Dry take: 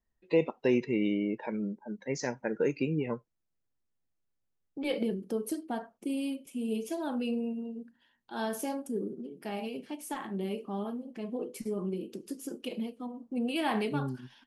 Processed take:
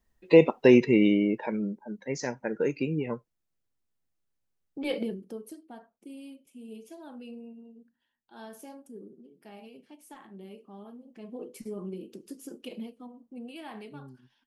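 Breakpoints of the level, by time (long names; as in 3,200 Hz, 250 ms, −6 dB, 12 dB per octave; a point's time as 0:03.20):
0:00.86 +9 dB
0:01.89 +1 dB
0:04.94 +1 dB
0:05.57 −11.5 dB
0:10.80 −11.5 dB
0:11.46 −3.5 dB
0:12.82 −3.5 dB
0:13.67 −13 dB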